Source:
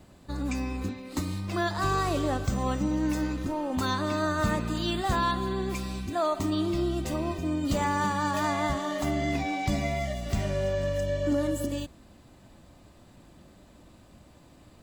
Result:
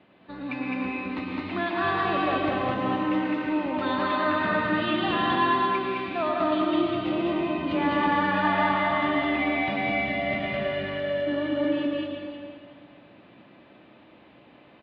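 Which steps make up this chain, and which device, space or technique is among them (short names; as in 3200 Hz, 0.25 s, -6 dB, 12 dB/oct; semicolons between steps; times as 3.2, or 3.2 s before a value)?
stadium PA (HPF 220 Hz 12 dB/oct; bell 2400 Hz +5.5 dB 0.92 oct; loudspeakers at several distances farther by 72 m -1 dB, 97 m -11 dB; reverb RT60 2.2 s, pre-delay 0.1 s, DRR 0 dB); steep low-pass 3500 Hz 36 dB/oct; gain -1.5 dB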